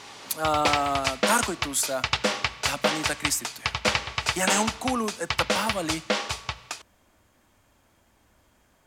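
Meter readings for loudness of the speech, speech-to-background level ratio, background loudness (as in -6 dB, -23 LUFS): -28.0 LUFS, -0.5 dB, -27.5 LUFS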